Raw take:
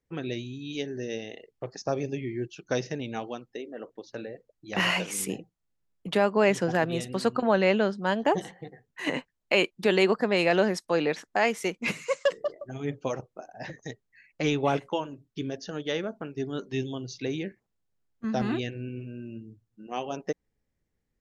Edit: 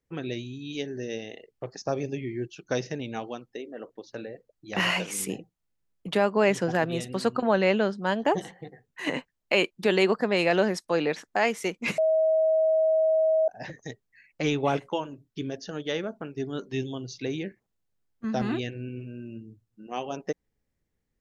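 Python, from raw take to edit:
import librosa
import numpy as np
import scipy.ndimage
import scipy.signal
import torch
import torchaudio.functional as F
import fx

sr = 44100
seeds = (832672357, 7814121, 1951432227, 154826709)

y = fx.edit(x, sr, fx.bleep(start_s=11.98, length_s=1.5, hz=637.0, db=-19.0), tone=tone)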